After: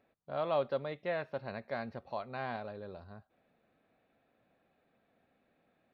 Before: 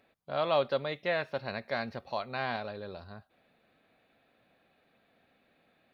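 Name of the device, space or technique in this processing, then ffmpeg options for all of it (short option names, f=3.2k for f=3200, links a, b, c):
through cloth: -af "highshelf=f=2.3k:g=-12,volume=-3dB"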